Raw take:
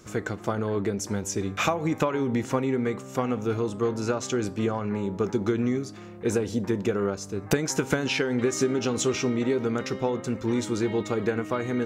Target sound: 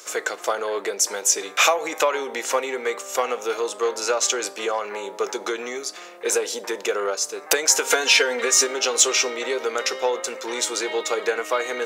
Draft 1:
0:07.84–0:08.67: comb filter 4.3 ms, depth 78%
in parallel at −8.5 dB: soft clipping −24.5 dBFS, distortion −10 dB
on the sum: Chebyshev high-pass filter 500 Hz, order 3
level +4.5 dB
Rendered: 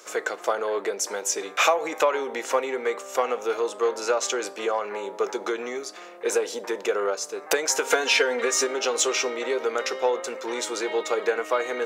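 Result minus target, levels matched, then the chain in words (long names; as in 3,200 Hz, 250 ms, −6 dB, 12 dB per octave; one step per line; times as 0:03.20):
4,000 Hz band −2.5 dB
0:07.84–0:08.67: comb filter 4.3 ms, depth 78%
in parallel at −8.5 dB: soft clipping −24.5 dBFS, distortion −10 dB
on the sum: Chebyshev high-pass filter 500 Hz, order 3
high-shelf EQ 2,500 Hz +8.5 dB
level +4.5 dB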